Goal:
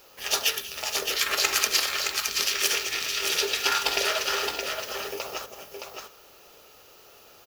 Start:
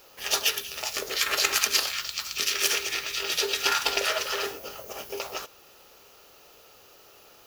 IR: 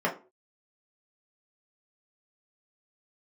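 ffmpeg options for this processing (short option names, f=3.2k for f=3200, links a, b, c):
-filter_complex "[0:a]aecho=1:1:618:0.531,asplit=2[a][b];[1:a]atrim=start_sample=2205,adelay=47[c];[b][c]afir=irnorm=-1:irlink=0,volume=-26.5dB[d];[a][d]amix=inputs=2:normalize=0"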